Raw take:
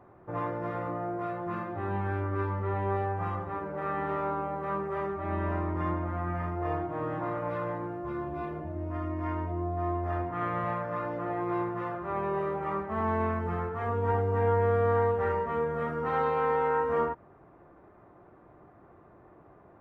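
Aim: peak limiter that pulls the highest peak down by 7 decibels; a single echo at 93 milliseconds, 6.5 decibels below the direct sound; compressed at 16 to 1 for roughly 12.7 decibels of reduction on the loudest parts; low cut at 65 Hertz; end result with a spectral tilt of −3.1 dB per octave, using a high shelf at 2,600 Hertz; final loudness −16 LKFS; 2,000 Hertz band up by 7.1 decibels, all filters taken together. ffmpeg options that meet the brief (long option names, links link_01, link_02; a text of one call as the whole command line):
ffmpeg -i in.wav -af "highpass=65,equalizer=frequency=2000:width_type=o:gain=7.5,highshelf=frequency=2600:gain=3.5,acompressor=threshold=-34dB:ratio=16,alimiter=level_in=9dB:limit=-24dB:level=0:latency=1,volume=-9dB,aecho=1:1:93:0.473,volume=24.5dB" out.wav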